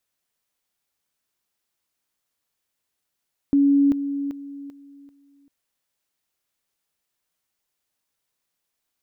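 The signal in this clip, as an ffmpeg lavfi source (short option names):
-f lavfi -i "aevalsrc='pow(10,(-13.5-10*floor(t/0.39))/20)*sin(2*PI*281*t)':d=1.95:s=44100"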